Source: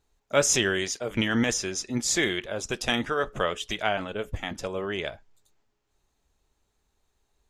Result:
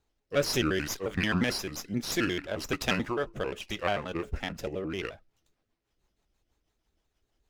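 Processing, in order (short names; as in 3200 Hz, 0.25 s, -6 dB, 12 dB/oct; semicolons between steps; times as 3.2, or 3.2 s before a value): trilling pitch shifter -4 st, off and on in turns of 88 ms; rotary speaker horn 0.65 Hz, later 6.3 Hz, at 4.71; running maximum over 3 samples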